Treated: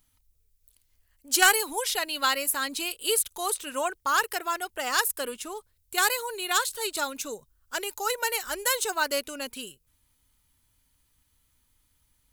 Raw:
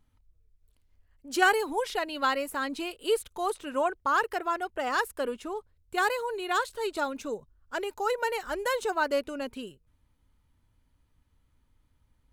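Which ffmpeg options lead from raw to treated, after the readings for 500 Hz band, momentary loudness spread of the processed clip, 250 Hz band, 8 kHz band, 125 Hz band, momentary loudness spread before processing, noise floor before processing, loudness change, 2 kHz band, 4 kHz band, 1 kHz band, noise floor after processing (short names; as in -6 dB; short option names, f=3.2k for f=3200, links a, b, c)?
-3.0 dB, 12 LU, -4.0 dB, +15.5 dB, n/a, 11 LU, -70 dBFS, +3.0 dB, +3.0 dB, +8.5 dB, -0.5 dB, -70 dBFS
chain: -af "crystalizer=i=8:c=0,aeval=exprs='0.891*(cos(1*acos(clip(val(0)/0.891,-1,1)))-cos(1*PI/2))+0.1*(cos(3*acos(clip(val(0)/0.891,-1,1)))-cos(3*PI/2))':c=same,volume=-1dB"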